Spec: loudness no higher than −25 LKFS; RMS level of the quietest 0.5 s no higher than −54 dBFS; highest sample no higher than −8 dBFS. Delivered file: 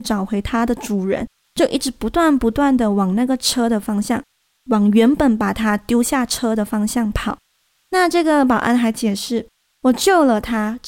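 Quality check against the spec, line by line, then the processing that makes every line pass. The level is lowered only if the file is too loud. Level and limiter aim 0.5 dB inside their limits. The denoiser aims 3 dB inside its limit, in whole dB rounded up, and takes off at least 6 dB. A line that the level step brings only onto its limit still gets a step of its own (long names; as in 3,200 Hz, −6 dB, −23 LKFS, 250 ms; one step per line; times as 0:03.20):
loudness −17.5 LKFS: out of spec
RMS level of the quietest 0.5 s −64 dBFS: in spec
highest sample −3.0 dBFS: out of spec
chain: level −8 dB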